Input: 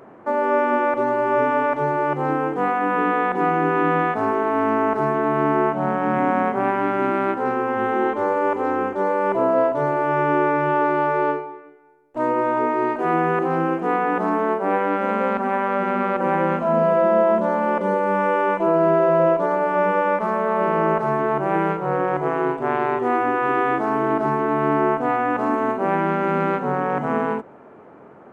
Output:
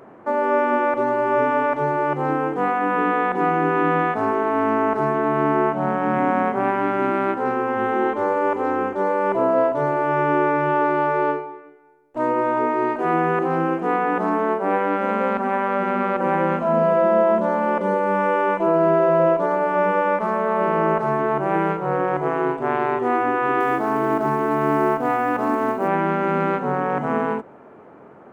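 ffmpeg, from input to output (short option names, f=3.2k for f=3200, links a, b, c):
-filter_complex "[0:a]asettb=1/sr,asplit=3[a][b][c];[a]atrim=end=23.604[d];[b]atrim=start=23.6:end=25.88,asetpts=PTS-STARTPTS,afade=t=in:d=0.004:c=qsin,afade=t=out:st=2.276:d=0.004:c=qsin,acrusher=bits=9:mode=log:mix=0:aa=0.000001[e];[c]atrim=start=25.876[f];[d][e]acrossfade=d=0.004:c1=hsin:c2=qsin[g];[g][f]acrossfade=d=0.004:c1=qsin:c2=hsin"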